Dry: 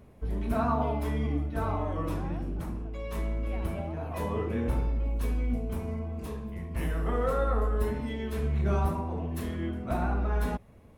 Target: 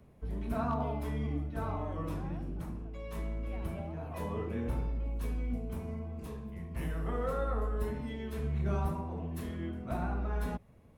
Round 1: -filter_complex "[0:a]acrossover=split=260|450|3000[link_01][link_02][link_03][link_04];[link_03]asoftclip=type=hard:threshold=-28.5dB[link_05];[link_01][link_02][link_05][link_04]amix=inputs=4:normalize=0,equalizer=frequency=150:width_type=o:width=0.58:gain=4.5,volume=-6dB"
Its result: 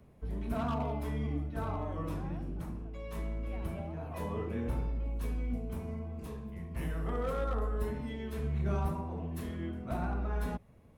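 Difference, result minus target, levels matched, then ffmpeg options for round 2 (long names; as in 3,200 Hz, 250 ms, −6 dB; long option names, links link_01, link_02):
hard clipping: distortion +21 dB
-filter_complex "[0:a]acrossover=split=260|450|3000[link_01][link_02][link_03][link_04];[link_03]asoftclip=type=hard:threshold=-21.5dB[link_05];[link_01][link_02][link_05][link_04]amix=inputs=4:normalize=0,equalizer=frequency=150:width_type=o:width=0.58:gain=4.5,volume=-6dB"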